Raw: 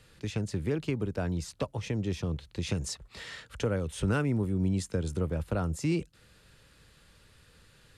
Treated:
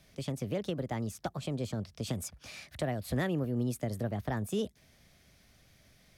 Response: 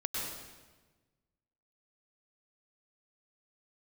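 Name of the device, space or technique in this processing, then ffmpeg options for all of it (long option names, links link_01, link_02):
nightcore: -af "asetrate=56889,aresample=44100,volume=-3.5dB"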